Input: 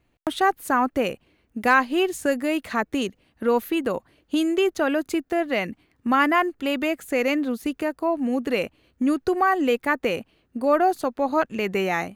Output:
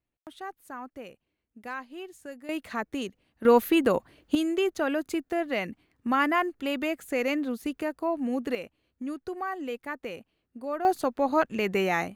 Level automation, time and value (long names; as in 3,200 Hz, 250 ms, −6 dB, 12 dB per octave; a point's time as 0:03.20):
−19 dB
from 0:02.49 −7.5 dB
from 0:03.45 +2 dB
from 0:04.35 −5 dB
from 0:08.55 −13 dB
from 0:10.85 −2 dB